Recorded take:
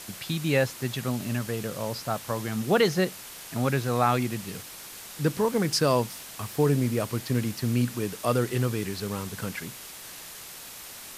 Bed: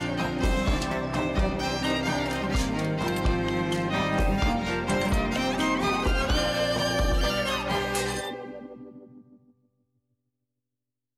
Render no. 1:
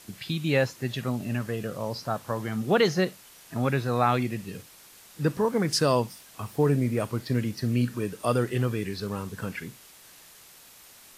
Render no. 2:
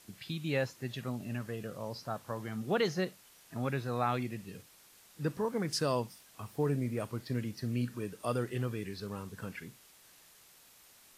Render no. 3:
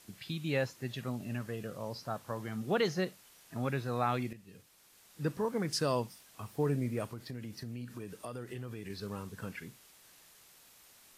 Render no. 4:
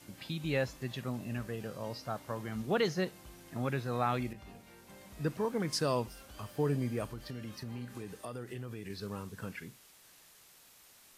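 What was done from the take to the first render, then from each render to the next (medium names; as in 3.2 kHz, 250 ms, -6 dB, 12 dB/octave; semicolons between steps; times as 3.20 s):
noise print and reduce 9 dB
trim -8.5 dB
4.33–5.21 s: fade in linear, from -12.5 dB; 7.07–8.90 s: compression 5:1, threshold -38 dBFS
add bed -29 dB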